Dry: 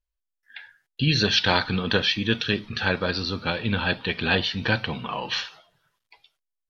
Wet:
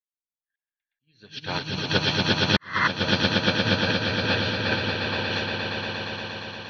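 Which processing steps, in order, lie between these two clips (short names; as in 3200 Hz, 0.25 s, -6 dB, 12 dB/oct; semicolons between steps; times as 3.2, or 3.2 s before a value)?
on a send: swelling echo 0.117 s, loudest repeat 8, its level -4 dB; on the sum: painted sound noise, 2.56–2.88, 960–2100 Hz -10 dBFS; auto swell 0.544 s; upward expander 2.5:1, over -37 dBFS; gain -2 dB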